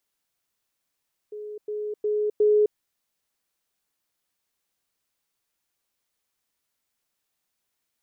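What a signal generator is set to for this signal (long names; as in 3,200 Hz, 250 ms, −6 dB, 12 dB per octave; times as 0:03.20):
level staircase 421 Hz −33.5 dBFS, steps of 6 dB, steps 4, 0.26 s 0.10 s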